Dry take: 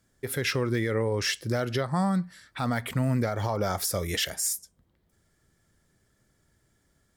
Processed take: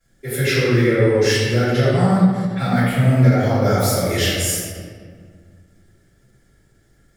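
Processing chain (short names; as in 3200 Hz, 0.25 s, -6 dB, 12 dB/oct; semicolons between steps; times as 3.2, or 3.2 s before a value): bell 1000 Hz -8.5 dB 0.34 oct; reverb RT60 1.9 s, pre-delay 3 ms, DRR -19 dB; ending taper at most 150 dB/s; gain -8.5 dB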